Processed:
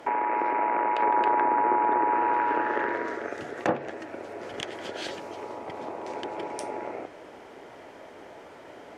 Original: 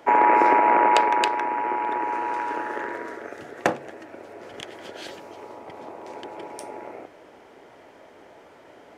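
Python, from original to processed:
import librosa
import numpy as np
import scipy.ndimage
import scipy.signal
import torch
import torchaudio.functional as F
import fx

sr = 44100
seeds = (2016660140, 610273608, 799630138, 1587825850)

y = fx.over_compress(x, sr, threshold_db=-23.0, ratio=-1.0)
y = fx.env_lowpass_down(y, sr, base_hz=1600.0, full_db=-19.0)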